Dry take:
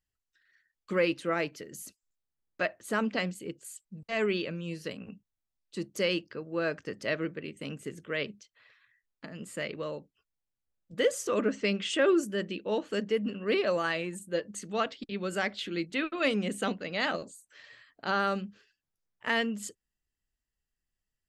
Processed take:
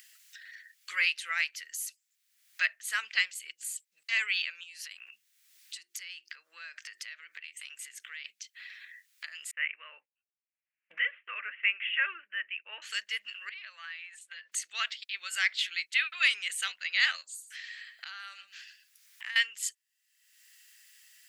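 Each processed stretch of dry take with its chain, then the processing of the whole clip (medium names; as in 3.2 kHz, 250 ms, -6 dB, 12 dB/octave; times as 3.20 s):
4.63–8.25 s: hum notches 50/100/150/200/250/300/350/400 Hz + compression 10:1, threshold -44 dBFS
9.51–12.82 s: steep low-pass 2.8 kHz 72 dB/octave + expander -49 dBFS
13.49–14.52 s: compression 12:1, threshold -40 dBFS + band-pass 690–3200 Hz
17.21–19.36 s: compression 3:1, threshold -44 dBFS + delay 121 ms -16 dB
whole clip: Chebyshev high-pass 1.9 kHz, order 3; upward compressor, threshold -45 dBFS; trim +8 dB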